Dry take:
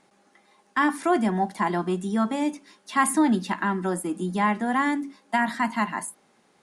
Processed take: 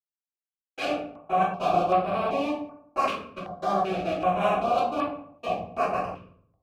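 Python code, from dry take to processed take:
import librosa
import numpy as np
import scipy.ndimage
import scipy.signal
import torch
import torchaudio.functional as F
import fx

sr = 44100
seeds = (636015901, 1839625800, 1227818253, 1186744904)

y = fx.self_delay(x, sr, depth_ms=0.95)
y = fx.schmitt(y, sr, flips_db=-26.0)
y = fx.vowel_filter(y, sr, vowel='a')
y = fx.low_shelf(y, sr, hz=140.0, db=7.0)
y = fx.step_gate(y, sr, bpm=116, pattern='xxxxx.xx..x.xxxx', floor_db=-60.0, edge_ms=4.5)
y = fx.highpass(y, sr, hz=110.0, slope=6)
y = fx.high_shelf(y, sr, hz=7700.0, db=-4.5)
y = fx.echo_bbd(y, sr, ms=110, stages=1024, feedback_pct=33, wet_db=-15)
y = fx.room_shoebox(y, sr, seeds[0], volume_m3=64.0, walls='mixed', distance_m=2.9)
y = fx.filter_held_notch(y, sr, hz=2.6, low_hz=760.0, high_hz=6400.0)
y = y * 10.0 ** (6.5 / 20.0)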